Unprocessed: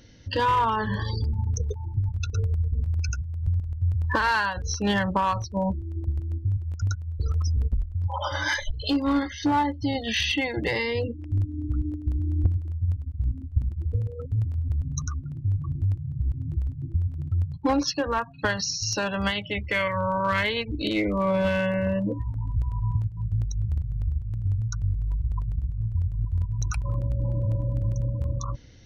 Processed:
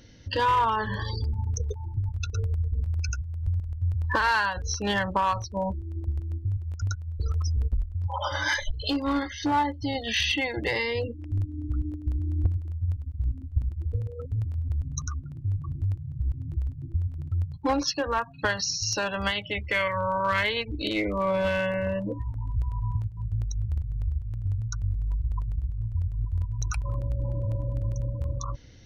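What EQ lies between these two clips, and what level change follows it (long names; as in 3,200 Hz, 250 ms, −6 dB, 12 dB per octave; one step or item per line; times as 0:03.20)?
dynamic equaliser 180 Hz, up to −6 dB, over −39 dBFS, Q 0.79
0.0 dB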